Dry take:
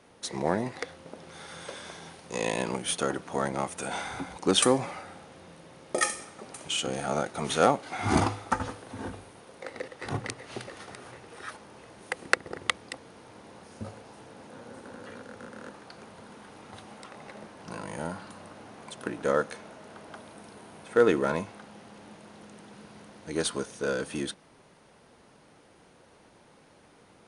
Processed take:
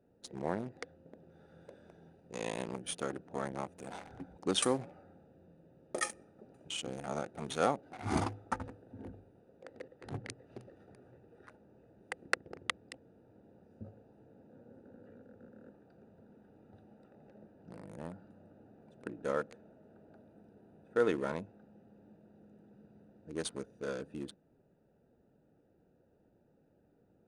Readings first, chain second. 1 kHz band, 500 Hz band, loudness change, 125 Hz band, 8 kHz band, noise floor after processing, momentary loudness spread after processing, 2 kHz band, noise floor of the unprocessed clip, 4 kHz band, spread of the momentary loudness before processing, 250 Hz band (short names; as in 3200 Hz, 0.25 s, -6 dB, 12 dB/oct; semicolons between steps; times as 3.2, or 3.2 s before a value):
-9.5 dB, -8.5 dB, -8.0 dB, -8.0 dB, -10.0 dB, -70 dBFS, 24 LU, -9.5 dB, -58 dBFS, -9.5 dB, 23 LU, -8.0 dB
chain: Wiener smoothing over 41 samples; gain -8 dB